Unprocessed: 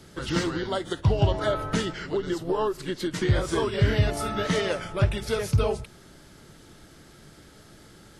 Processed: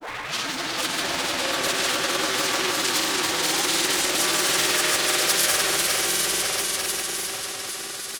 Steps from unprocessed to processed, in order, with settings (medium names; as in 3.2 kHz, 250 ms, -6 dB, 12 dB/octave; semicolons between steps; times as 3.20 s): tape start-up on the opening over 0.54 s; compression 10:1, threshold -24 dBFS, peak gain reduction 10 dB; peaking EQ 88 Hz -10 dB 1.9 oct; hard clipper -34 dBFS, distortion -7 dB; tilt EQ +4.5 dB/octave; on a send: echo with a slow build-up 138 ms, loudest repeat 5, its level -4 dB; on the sum: formant-preserving pitch shift -2 st; granulator, pitch spread up and down by 0 st; loudspeaker Doppler distortion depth 0.31 ms; trim +8 dB